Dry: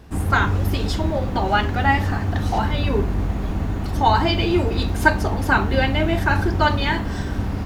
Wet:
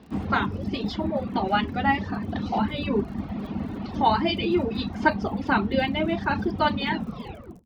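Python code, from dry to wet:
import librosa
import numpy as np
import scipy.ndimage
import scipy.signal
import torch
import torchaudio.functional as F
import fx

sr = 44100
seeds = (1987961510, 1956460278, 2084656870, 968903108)

y = fx.tape_stop_end(x, sr, length_s=0.73)
y = fx.cabinet(y, sr, low_hz=110.0, low_slope=12, high_hz=4600.0, hz=(110.0, 220.0, 1600.0), db=(-8, 10, -5))
y = fx.dmg_crackle(y, sr, seeds[0], per_s=62.0, level_db=-38.0)
y = fx.dereverb_blind(y, sr, rt60_s=1.0)
y = y * 10.0 ** (-3.0 / 20.0)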